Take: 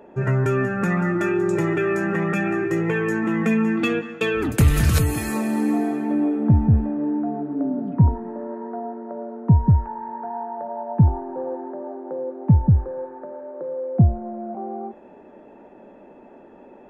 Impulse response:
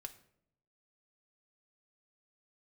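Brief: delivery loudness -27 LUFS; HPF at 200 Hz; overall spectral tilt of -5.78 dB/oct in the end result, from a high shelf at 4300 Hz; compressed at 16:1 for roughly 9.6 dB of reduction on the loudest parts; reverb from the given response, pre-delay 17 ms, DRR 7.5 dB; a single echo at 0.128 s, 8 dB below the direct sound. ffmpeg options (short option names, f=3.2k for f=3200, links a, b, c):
-filter_complex "[0:a]highpass=200,highshelf=f=4.3k:g=3.5,acompressor=threshold=-25dB:ratio=16,aecho=1:1:128:0.398,asplit=2[a][b];[1:a]atrim=start_sample=2205,adelay=17[c];[b][c]afir=irnorm=-1:irlink=0,volume=-3dB[d];[a][d]amix=inputs=2:normalize=0,volume=1.5dB"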